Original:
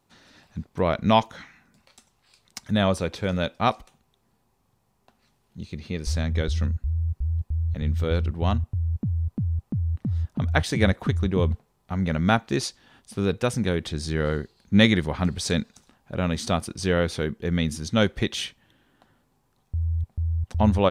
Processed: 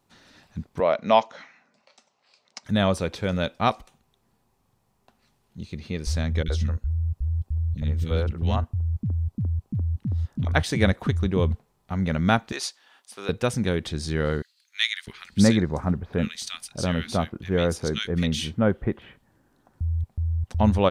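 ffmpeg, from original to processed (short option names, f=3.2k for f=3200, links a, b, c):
-filter_complex "[0:a]asettb=1/sr,asplit=3[a][b][c];[a]atrim=end=0.804[d];[b]atrim=start=0.8:end=2.65,asetpts=PTS-STARTPTS,afade=t=in:d=0.004:c=qsin,afade=t=out:st=1.846:d=0.004:c=qsin,highpass=300,equalizer=f=340:t=q:w=4:g=-6,equalizer=f=600:t=q:w=4:g=6,equalizer=f=1.6k:t=q:w=4:g=-3,equalizer=f=3.5k:t=q:w=4:g=-4,lowpass=f=6.2k:w=0.5412,lowpass=f=6.2k:w=1.3066[e];[c]atrim=start=2.646[f];[d][e]acrossfade=d=0.004:c1=hsin:c2=qsin[g];[g][f]acrossfade=d=0.004:c1=qsin:c2=hsin,asettb=1/sr,asplit=3[h][i][j];[h]atrim=end=6.434[k];[i]atrim=start=6.43:end=10.53,asetpts=PTS-STARTPTS,afade=t=in:d=0.004:c=qsin,afade=t=out:st=4.096:d=0.004:c=qsin,acrossover=split=310|1900[l][m][n];[n]adelay=30[o];[m]adelay=70[p];[l][p][o]amix=inputs=3:normalize=0,atrim=end_sample=180810[q];[j]atrim=start=10.526[r];[k][q]acrossfade=d=0.004:c1=hsin:c2=qsin[s];[s][r]acrossfade=d=0.004:c1=qsin:c2=hsin,asettb=1/sr,asplit=3[t][u][v];[t]atrim=end=12.524[w];[u]atrim=start=12.52:end=13.29,asetpts=PTS-STARTPTS,afade=t=in:d=0.004:c=qsin,afade=t=out:st=0.766:d=0.004:c=qsin,highpass=700[x];[v]atrim=start=13.286[y];[w][x]acrossfade=d=0.004:c1=hsin:c2=qsin[z];[z][y]acrossfade=d=0.004:c1=qsin:c2=hsin,asettb=1/sr,asplit=3[aa][ab][ac];[aa]atrim=end=14.424[ad];[ab]atrim=start=14.42:end=19.81,asetpts=PTS-STARTPTS,afade=t=in:d=0.004:c=qsin,afade=t=out:st=5.386:d=0.004:c=qsin,acrossover=split=1700[ae][af];[ae]adelay=650[ag];[ag][af]amix=inputs=2:normalize=0,atrim=end_sample=237699[ah];[ac]atrim=start=19.806[ai];[ad][ah]acrossfade=d=0.004:c1=hsin:c2=qsin[aj];[aj][ai]acrossfade=d=0.004:c1=qsin:c2=hsin"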